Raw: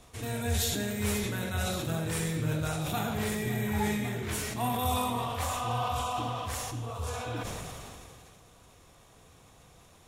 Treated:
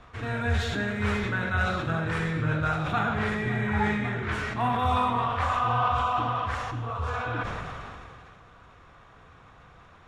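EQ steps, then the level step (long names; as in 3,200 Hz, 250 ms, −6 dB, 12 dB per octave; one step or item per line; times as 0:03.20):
low-pass filter 3,400 Hz 12 dB per octave
low-shelf EQ 180 Hz +5 dB
parametric band 1,400 Hz +12.5 dB 1.2 octaves
0.0 dB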